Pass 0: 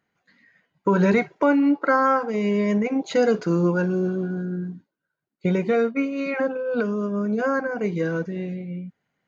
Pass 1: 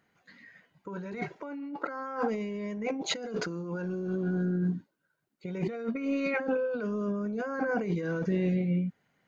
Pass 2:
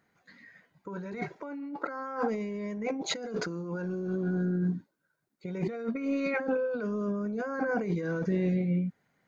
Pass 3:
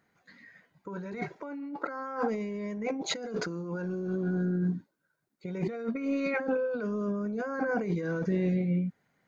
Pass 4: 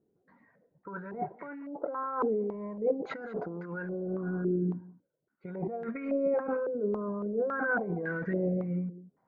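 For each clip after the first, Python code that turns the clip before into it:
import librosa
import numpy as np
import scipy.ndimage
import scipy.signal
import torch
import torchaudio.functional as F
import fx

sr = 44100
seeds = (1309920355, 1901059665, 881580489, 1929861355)

y1 = fx.over_compress(x, sr, threshold_db=-30.0, ratio=-1.0)
y1 = y1 * librosa.db_to_amplitude(-2.5)
y2 = fx.peak_eq(y1, sr, hz=2900.0, db=-6.5, octaves=0.31)
y3 = y2
y4 = y3 + 10.0 ** (-18.0 / 20.0) * np.pad(y3, (int(196 * sr / 1000.0), 0))[:len(y3)]
y4 = fx.filter_held_lowpass(y4, sr, hz=3.6, low_hz=400.0, high_hz=1800.0)
y4 = y4 * librosa.db_to_amplitude(-4.5)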